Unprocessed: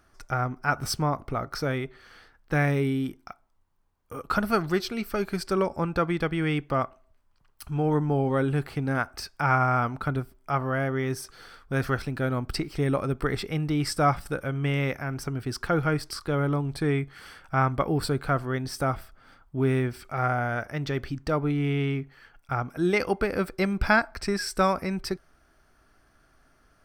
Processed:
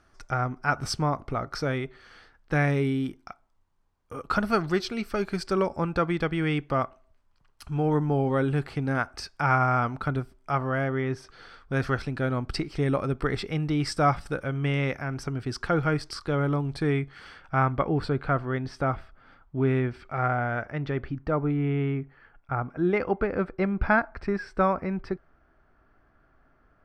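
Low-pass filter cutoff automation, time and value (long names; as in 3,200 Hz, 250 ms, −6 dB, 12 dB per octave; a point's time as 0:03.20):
0:10.79 7,700 Hz
0:11.04 2,900 Hz
0:11.80 6,800 Hz
0:16.84 6,800 Hz
0:17.85 3,100 Hz
0:20.48 3,100 Hz
0:21.23 1,800 Hz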